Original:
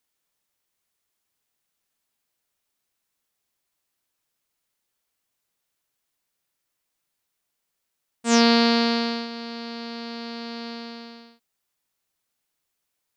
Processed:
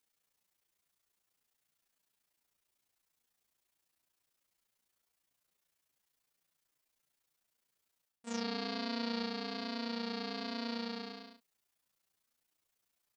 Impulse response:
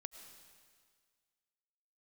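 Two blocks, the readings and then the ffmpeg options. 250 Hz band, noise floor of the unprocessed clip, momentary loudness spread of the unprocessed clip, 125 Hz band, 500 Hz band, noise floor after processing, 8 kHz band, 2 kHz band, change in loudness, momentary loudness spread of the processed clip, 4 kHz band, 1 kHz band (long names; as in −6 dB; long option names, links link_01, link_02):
−15.0 dB, −80 dBFS, 18 LU, can't be measured, −15.0 dB, −84 dBFS, −20.5 dB, −15.0 dB, −15.5 dB, 10 LU, −14.5 dB, −15.0 dB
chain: -filter_complex "[0:a]areverse,acompressor=threshold=-31dB:ratio=16,areverse,tremolo=f=29:d=0.974,asplit=2[link_01][link_02];[link_02]adelay=10.3,afreqshift=-1.2[link_03];[link_01][link_03]amix=inputs=2:normalize=1,volume=4dB"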